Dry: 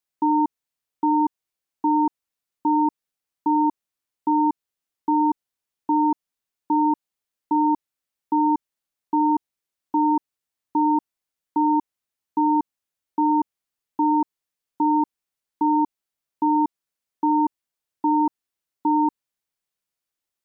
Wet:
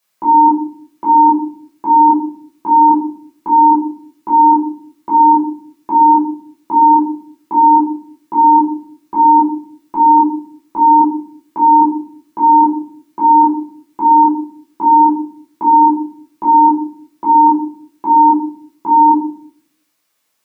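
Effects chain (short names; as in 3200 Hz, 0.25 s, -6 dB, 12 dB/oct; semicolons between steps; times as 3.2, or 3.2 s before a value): HPF 350 Hz 6 dB/oct; in parallel at 0 dB: negative-ratio compressor -25 dBFS, ratio -0.5; on the sum: limiter -14 dBFS, peak gain reduction 5 dB; shoebox room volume 590 m³, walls furnished, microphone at 5.7 m; gain +3 dB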